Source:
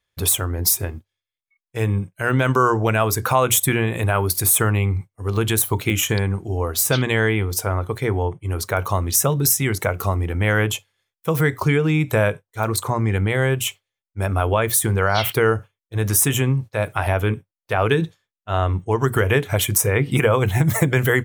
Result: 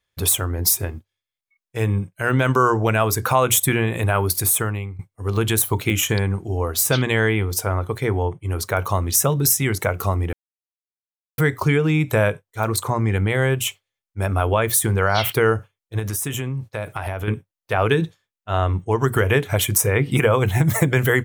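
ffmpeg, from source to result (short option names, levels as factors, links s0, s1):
-filter_complex "[0:a]asettb=1/sr,asplit=3[s0][s1][s2];[s0]atrim=end=15.994[s3];[s1]atrim=start=15.99:end=17.28,asetpts=PTS-STARTPTS,afade=t=in:d=0.004:c=qsin,afade=t=out:st=1.286:d=0.004:c=qsin,acompressor=threshold=0.0708:ratio=4:attack=3.2:release=140:knee=1:detection=peak[s4];[s2]atrim=start=17.276[s5];[s3][s4]acrossfade=d=0.004:c1=hsin:c2=qsin[s6];[s6][s5]acrossfade=d=0.004:c1=qsin:c2=hsin,asplit=4[s7][s8][s9][s10];[s7]atrim=end=4.99,asetpts=PTS-STARTPTS,afade=t=out:st=4.35:d=0.64:silence=0.133352[s11];[s8]atrim=start=4.99:end=10.33,asetpts=PTS-STARTPTS,afade=t=in:d=0.004:c=hsin:silence=0.133352,afade=t=out:st=5.336:d=0.004:c=hsin[s12];[s9]atrim=start=10.33:end=11.38,asetpts=PTS-STARTPTS,volume=0[s13];[s10]atrim=start=11.38,asetpts=PTS-STARTPTS,afade=t=in:d=0.004:c=hsin[s14];[s11][s12][s13][s14]concat=n=4:v=0:a=1"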